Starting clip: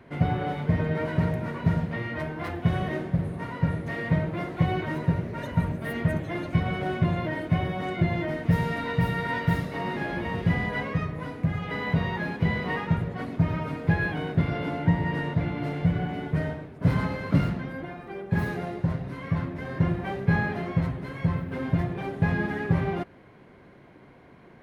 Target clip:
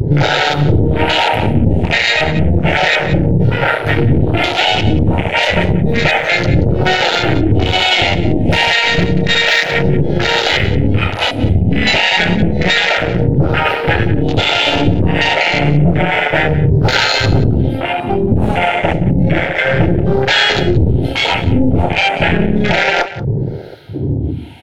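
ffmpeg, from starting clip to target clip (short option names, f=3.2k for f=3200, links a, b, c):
-filter_complex "[0:a]afftfilt=real='re*pow(10,11/40*sin(2*PI*(0.58*log(max(b,1)*sr/1024/100)/log(2)-(-0.3)*(pts-256)/sr)))':imag='im*pow(10,11/40*sin(2*PI*(0.58*log(max(b,1)*sr/1024/100)/log(2)-(-0.3)*(pts-256)/sr)))':win_size=1024:overlap=0.75,aeval=exprs='0.422*(cos(1*acos(clip(val(0)/0.422,-1,1)))-cos(1*PI/2))+0.0944*(cos(8*acos(clip(val(0)/0.422,-1,1)))-cos(8*PI/2))':c=same,asuperstop=centerf=1100:order=8:qfactor=3.2,acrossover=split=430[a][b];[a]acompressor=threshold=-32dB:ratio=8[c];[c][b]amix=inputs=2:normalize=0,highshelf=f=2.2k:t=q:w=1.5:g=7,asplit=2[d][e];[e]adelay=28,volume=-8.5dB[f];[d][f]amix=inputs=2:normalize=0,acompressor=threshold=-43dB:ratio=2,acrossover=split=490[g][h];[g]aeval=exprs='val(0)*(1-1/2+1/2*cos(2*PI*1.2*n/s))':c=same[i];[h]aeval=exprs='val(0)*(1-1/2-1/2*cos(2*PI*1.2*n/s))':c=same[j];[i][j]amix=inputs=2:normalize=0,afwtdn=0.00398,equalizer=f=87:w=0.78:g=11,asplit=2[k][l];[l]adelay=180.8,volume=-16dB,highshelf=f=4k:g=-4.07[m];[k][m]amix=inputs=2:normalize=0,alimiter=level_in=32.5dB:limit=-1dB:release=50:level=0:latency=1,volume=-1dB"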